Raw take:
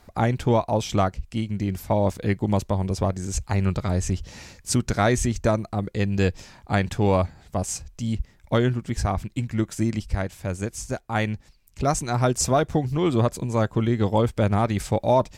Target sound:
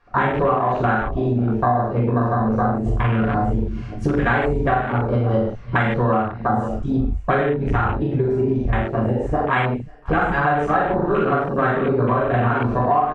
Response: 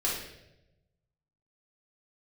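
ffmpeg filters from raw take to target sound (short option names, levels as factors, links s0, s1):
-filter_complex "[0:a]asetrate=51597,aresample=44100,lowpass=3300,equalizer=f=1400:t=o:w=1.1:g=8.5,asplit=2[s0][s1];[s1]adelay=41,volume=0.668[s2];[s0][s2]amix=inputs=2:normalize=0,aecho=1:1:540:0.141[s3];[1:a]atrim=start_sample=2205,atrim=end_sample=6615[s4];[s3][s4]afir=irnorm=-1:irlink=0,afwtdn=0.1,acompressor=threshold=0.0891:ratio=6,volume=1.68"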